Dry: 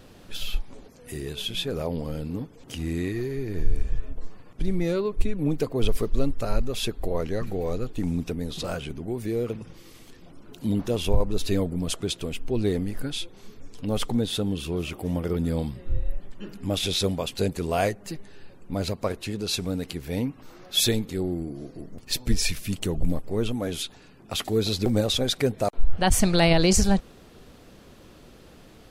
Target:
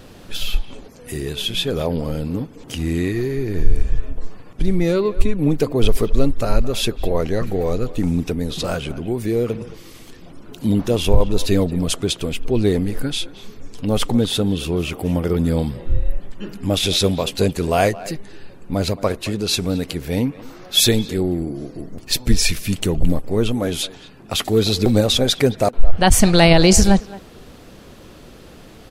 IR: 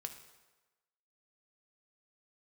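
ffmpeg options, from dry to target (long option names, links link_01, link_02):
-filter_complex "[0:a]asplit=2[link_01][link_02];[link_02]adelay=220,highpass=300,lowpass=3400,asoftclip=type=hard:threshold=-17dB,volume=-16dB[link_03];[link_01][link_03]amix=inputs=2:normalize=0,volume=7.5dB"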